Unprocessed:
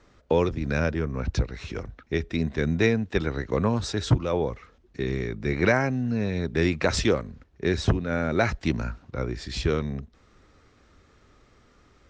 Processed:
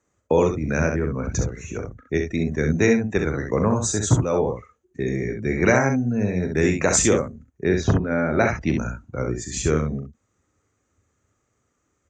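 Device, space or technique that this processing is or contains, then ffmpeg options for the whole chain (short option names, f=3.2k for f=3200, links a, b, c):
budget condenser microphone: -filter_complex "[0:a]asettb=1/sr,asplit=3[a][b][c];[a]atrim=end=7.644[d];[b]atrim=start=7.64:end=8.72,asetpts=PTS-STARTPTS,afade=t=in:d=0.004:c=qsin,afade=t=out:st=1.076:d=0.004:c=qsin,lowpass=f=5.2k:w=0.5412,lowpass=f=5.2k:w=1.3066[e];[c]atrim=start=8.716[f];[d][e]acrossfade=d=0.004:c1=hsin:c2=qsin[g];[g][f]acrossfade=d=0.004:c1=qsin:c2=hsin,highpass=76,highshelf=f=5.3k:t=q:w=3:g=8,afftdn=nr=17:nf=-42,bandreject=f=5.4k:w=6.9,aecho=1:1:39|66:0.316|0.531,volume=3dB"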